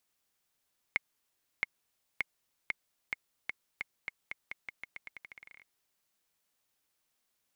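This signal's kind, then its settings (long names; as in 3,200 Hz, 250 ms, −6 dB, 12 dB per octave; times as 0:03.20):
bouncing ball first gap 0.67 s, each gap 0.86, 2,160 Hz, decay 21 ms −14 dBFS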